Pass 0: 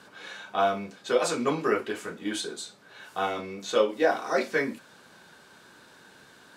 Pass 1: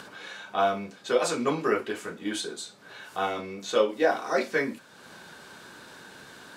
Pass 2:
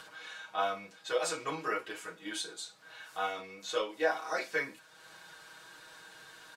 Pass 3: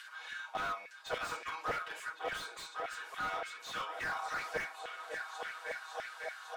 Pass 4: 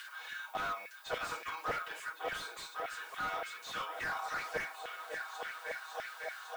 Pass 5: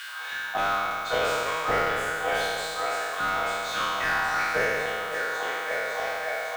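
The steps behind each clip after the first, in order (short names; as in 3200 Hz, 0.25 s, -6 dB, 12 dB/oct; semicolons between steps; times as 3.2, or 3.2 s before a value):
upward compressor, threshold -39 dBFS
bell 210 Hz -12 dB 2.3 oct; comb 6.3 ms, depth 90%; gain -6.5 dB
repeats that get brighter 0.552 s, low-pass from 750 Hz, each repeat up 2 oct, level -6 dB; LFO high-pass saw down 3.5 Hz 630–2000 Hz; slew limiter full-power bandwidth 37 Hz; gain -2.5 dB
reverse; upward compressor, threshold -42 dBFS; reverse; added noise violet -63 dBFS
spectral trails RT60 2.48 s; gain +7 dB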